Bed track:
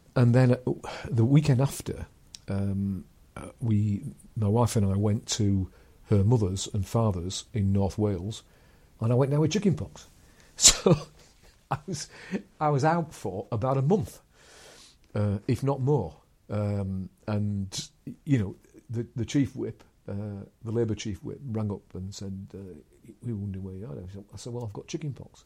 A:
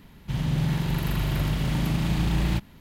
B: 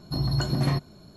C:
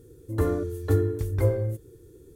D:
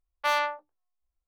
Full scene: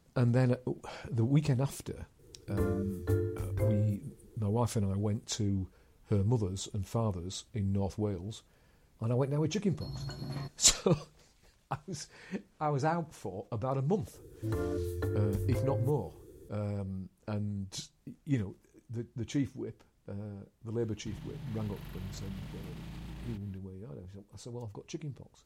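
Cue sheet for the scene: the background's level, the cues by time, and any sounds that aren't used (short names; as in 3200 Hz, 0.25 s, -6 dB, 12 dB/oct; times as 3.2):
bed track -7 dB
2.19 add C -8 dB
9.69 add B -15 dB
14.14 add C -2.5 dB + compressor 12:1, threshold -26 dBFS
20.78 add A -11 dB + compressor 4:1, threshold -31 dBFS
not used: D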